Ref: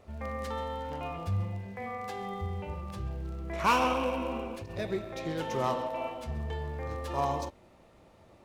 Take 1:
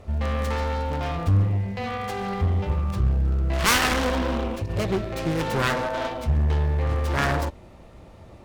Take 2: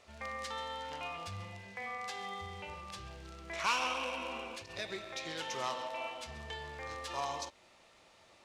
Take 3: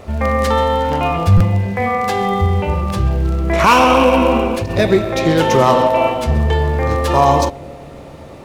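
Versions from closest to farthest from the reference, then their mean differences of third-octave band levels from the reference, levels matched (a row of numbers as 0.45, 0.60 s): 3, 1, 2; 2.0, 3.5, 7.0 dB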